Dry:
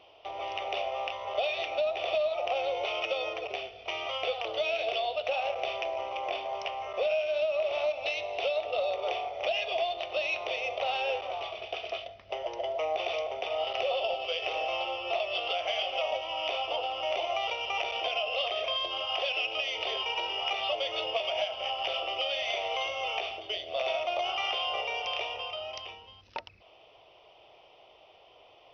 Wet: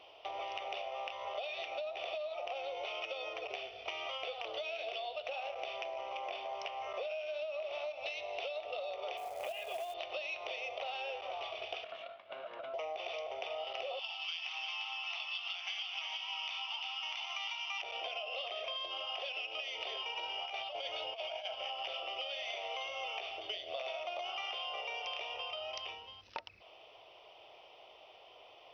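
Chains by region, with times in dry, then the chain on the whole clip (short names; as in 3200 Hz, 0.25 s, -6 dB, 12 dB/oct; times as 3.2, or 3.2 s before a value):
9.17–9.94 air absorption 390 m + short-mantissa float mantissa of 2-bit
11.84–12.74 minimum comb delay 1.8 ms + compressor 5:1, threshold -40 dBFS + speaker cabinet 260–3100 Hz, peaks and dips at 460 Hz -6 dB, 810 Hz +4 dB, 1800 Hz -5 dB
13.99–17.82 elliptic high-pass 880 Hz, stop band 50 dB + high shelf 4000 Hz +10 dB + echo 0.349 s -6 dB
20.23–21.55 comb 1.3 ms, depth 31% + negative-ratio compressor -32 dBFS, ratio -0.5
whole clip: low shelf 330 Hz -8.5 dB; compressor, threshold -39 dBFS; gain +1 dB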